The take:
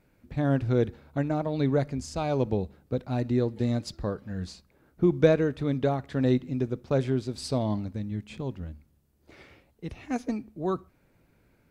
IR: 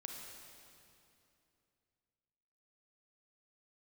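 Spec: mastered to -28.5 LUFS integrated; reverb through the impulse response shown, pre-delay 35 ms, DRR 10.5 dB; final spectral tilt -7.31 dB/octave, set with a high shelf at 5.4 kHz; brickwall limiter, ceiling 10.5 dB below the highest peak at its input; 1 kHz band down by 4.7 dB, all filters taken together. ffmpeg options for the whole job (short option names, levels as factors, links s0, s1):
-filter_complex "[0:a]equalizer=f=1000:t=o:g=-7.5,highshelf=f=5400:g=5.5,alimiter=limit=0.112:level=0:latency=1,asplit=2[s0][s1];[1:a]atrim=start_sample=2205,adelay=35[s2];[s1][s2]afir=irnorm=-1:irlink=0,volume=0.422[s3];[s0][s3]amix=inputs=2:normalize=0,volume=1.33"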